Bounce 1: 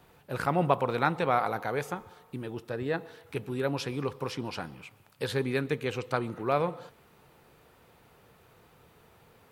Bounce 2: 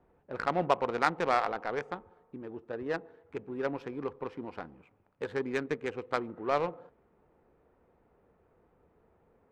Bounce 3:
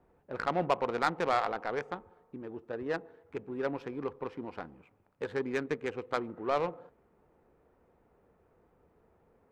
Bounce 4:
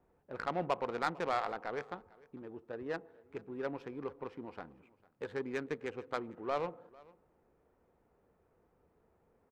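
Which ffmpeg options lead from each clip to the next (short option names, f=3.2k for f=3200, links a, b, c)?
-af "equalizer=f=125:t=o:w=1:g=-12,equalizer=f=2k:t=o:w=1:g=5,equalizer=f=8k:t=o:w=1:g=11,adynamicsmooth=sensitivity=1:basefreq=690,volume=-1.5dB"
-af "asoftclip=type=tanh:threshold=-15.5dB"
-af "aecho=1:1:450:0.0668,volume=-5dB"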